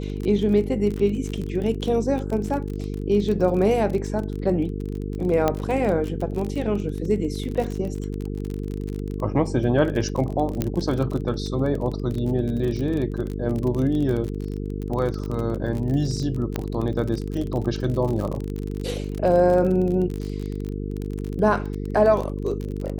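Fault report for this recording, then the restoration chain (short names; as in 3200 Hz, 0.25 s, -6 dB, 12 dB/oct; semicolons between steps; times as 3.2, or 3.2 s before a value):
buzz 50 Hz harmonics 9 -29 dBFS
crackle 31/s -27 dBFS
5.48 pop -8 dBFS
10.62 pop -9 dBFS
16.56 pop -11 dBFS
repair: de-click; de-hum 50 Hz, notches 9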